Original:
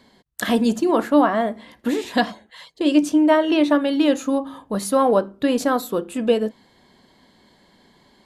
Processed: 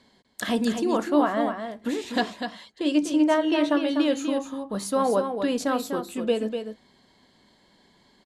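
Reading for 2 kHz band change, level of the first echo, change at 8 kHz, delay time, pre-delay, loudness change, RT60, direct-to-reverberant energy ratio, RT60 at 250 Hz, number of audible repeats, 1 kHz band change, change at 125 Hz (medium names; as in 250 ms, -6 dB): -4.5 dB, -7.0 dB, -3.5 dB, 247 ms, no reverb, -5.0 dB, no reverb, no reverb, no reverb, 1, -5.0 dB, no reading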